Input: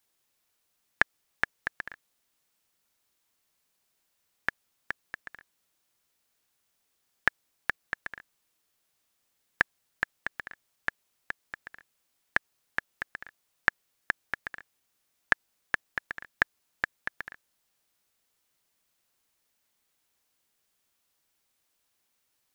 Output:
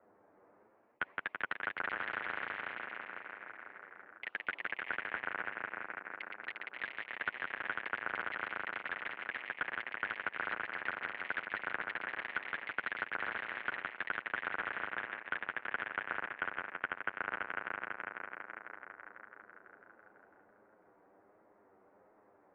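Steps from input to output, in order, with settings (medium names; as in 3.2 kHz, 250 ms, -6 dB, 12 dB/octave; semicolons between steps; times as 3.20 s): single-diode clipper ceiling -11 dBFS; level-controlled noise filter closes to 630 Hz, open at -37.5 dBFS; in parallel at +0.5 dB: peak limiter -11.5 dBFS, peak gain reduction 8 dB; on the sum: multi-head delay 166 ms, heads all three, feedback 50%, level -17 dB; reverse; compression 6:1, threshold -38 dBFS, peak gain reduction 20.5 dB; reverse; mistuned SSB -230 Hz 580–2200 Hz; flange 1.4 Hz, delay 9.3 ms, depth 1.3 ms, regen -5%; ever faster or slower copies 354 ms, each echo +2 st, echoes 3, each echo -6 dB; spectrum-flattening compressor 2:1; trim +9.5 dB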